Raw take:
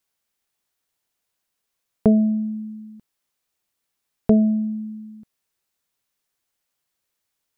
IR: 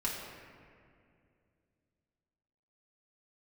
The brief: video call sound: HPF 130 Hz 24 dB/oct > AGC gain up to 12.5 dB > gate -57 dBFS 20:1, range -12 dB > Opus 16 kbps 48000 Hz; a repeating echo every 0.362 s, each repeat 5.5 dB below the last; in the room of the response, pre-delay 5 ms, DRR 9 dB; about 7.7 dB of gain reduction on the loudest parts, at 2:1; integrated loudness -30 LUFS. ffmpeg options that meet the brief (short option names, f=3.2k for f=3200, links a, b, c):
-filter_complex "[0:a]acompressor=threshold=-25dB:ratio=2,aecho=1:1:362|724|1086|1448|1810|2172|2534:0.531|0.281|0.149|0.079|0.0419|0.0222|0.0118,asplit=2[a][b];[1:a]atrim=start_sample=2205,adelay=5[c];[b][c]afir=irnorm=-1:irlink=0,volume=-13.5dB[d];[a][d]amix=inputs=2:normalize=0,highpass=f=130:w=0.5412,highpass=f=130:w=1.3066,dynaudnorm=m=12.5dB,agate=range=-12dB:threshold=-57dB:ratio=20,volume=-5dB" -ar 48000 -c:a libopus -b:a 16k